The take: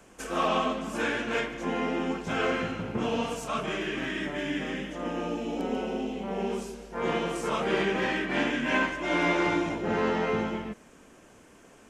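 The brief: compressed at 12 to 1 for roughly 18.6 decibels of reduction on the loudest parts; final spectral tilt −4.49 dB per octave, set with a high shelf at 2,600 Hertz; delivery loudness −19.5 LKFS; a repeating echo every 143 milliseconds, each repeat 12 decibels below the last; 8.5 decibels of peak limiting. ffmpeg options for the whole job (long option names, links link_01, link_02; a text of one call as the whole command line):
ffmpeg -i in.wav -af "highshelf=frequency=2600:gain=-8,acompressor=threshold=-42dB:ratio=12,alimiter=level_in=16dB:limit=-24dB:level=0:latency=1,volume=-16dB,aecho=1:1:143|286|429:0.251|0.0628|0.0157,volume=29dB" out.wav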